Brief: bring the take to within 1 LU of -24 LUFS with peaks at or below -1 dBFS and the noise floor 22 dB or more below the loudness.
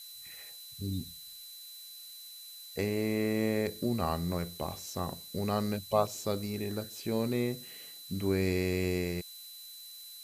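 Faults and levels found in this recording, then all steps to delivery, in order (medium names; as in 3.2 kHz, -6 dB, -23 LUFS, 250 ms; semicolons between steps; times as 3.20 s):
steady tone 4 kHz; tone level -48 dBFS; noise floor -48 dBFS; noise floor target -56 dBFS; loudness -33.5 LUFS; peak level -13.5 dBFS; loudness target -24.0 LUFS
-> band-stop 4 kHz, Q 30; noise print and reduce 8 dB; trim +9.5 dB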